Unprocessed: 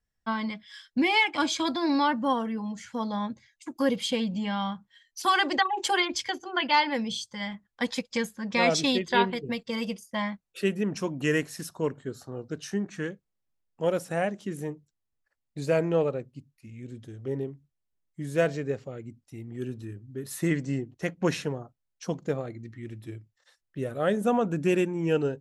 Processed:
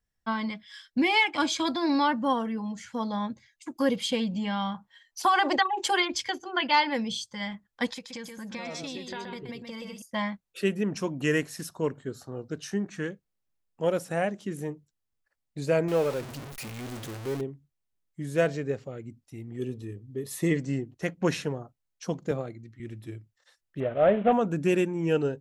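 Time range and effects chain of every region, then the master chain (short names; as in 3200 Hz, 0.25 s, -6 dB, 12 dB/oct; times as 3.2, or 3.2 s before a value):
4.74–5.56 bell 840 Hz +10.5 dB 1.4 oct + compressor 5:1, threshold -18 dBFS
7.93–10.02 compressor 4:1, threshold -37 dBFS + echo 0.126 s -5.5 dB
15.88–17.41 zero-crossing step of -31.5 dBFS + low shelf 270 Hz -6.5 dB
19.59–20.57 Butterworth band-stop 1500 Hz, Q 3.9 + small resonant body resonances 450/3400 Hz, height 9 dB
22.31–22.8 notch 1800 Hz, Q 17 + three-band expander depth 70%
23.8–24.33 CVSD 16 kbps + bell 650 Hz +12.5 dB 0.41 oct
whole clip: dry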